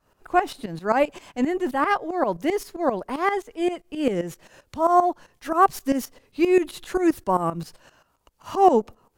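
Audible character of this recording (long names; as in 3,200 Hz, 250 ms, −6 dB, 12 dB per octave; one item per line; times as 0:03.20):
tremolo saw up 7.6 Hz, depth 80%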